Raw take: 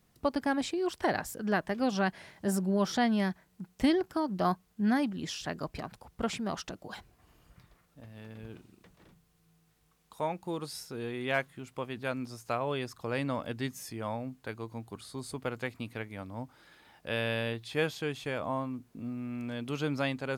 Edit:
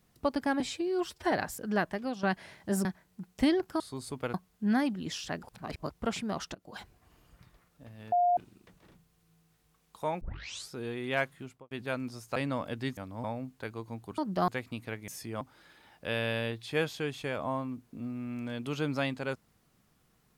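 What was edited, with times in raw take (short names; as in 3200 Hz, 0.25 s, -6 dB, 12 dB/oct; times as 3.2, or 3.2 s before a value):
0.6–1.08 stretch 1.5×
1.6–1.99 fade out, to -12 dB
2.61–3.26 cut
4.21–4.51 swap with 15.02–15.56
5.6–6.07 reverse
6.72–6.97 fade in, from -20 dB
8.29–8.54 bleep 708 Hz -22 dBFS
10.38 tape start 0.51 s
11.59–11.88 studio fade out
12.53–13.14 cut
13.75–14.08 swap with 16.16–16.43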